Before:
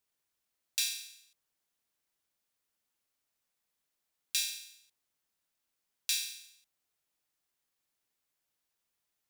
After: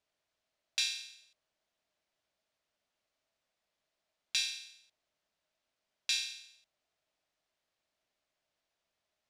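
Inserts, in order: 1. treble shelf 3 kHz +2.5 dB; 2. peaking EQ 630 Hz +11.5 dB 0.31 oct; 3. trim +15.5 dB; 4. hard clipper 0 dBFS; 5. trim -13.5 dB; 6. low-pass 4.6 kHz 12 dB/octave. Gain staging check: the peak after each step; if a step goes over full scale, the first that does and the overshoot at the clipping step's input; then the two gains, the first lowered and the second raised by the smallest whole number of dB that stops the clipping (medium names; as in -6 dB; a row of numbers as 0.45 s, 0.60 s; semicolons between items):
-8.5 dBFS, -8.5 dBFS, +7.0 dBFS, 0.0 dBFS, -13.5 dBFS, -16.5 dBFS; step 3, 7.0 dB; step 3 +8.5 dB, step 5 -6.5 dB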